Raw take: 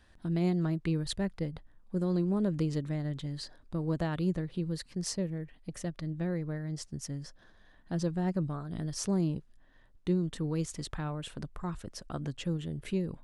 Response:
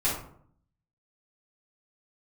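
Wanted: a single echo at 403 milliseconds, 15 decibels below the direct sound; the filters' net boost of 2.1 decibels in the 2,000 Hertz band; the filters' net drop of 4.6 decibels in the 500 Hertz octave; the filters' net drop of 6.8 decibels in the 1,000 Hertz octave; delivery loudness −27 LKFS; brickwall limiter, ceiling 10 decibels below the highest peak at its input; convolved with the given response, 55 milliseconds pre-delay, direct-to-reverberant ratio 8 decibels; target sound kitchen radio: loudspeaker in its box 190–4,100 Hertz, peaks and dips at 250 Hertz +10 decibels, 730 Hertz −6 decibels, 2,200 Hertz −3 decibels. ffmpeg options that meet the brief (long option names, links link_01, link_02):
-filter_complex "[0:a]equalizer=frequency=500:width_type=o:gain=-6.5,equalizer=frequency=1000:width_type=o:gain=-5.5,equalizer=frequency=2000:width_type=o:gain=6,alimiter=level_in=6dB:limit=-24dB:level=0:latency=1,volume=-6dB,aecho=1:1:403:0.178,asplit=2[link_01][link_02];[1:a]atrim=start_sample=2205,adelay=55[link_03];[link_02][link_03]afir=irnorm=-1:irlink=0,volume=-18dB[link_04];[link_01][link_04]amix=inputs=2:normalize=0,highpass=190,equalizer=frequency=250:width_type=q:width=4:gain=10,equalizer=frequency=730:width_type=q:width=4:gain=-6,equalizer=frequency=2200:width_type=q:width=4:gain=-3,lowpass=frequency=4100:width=0.5412,lowpass=frequency=4100:width=1.3066,volume=13.5dB"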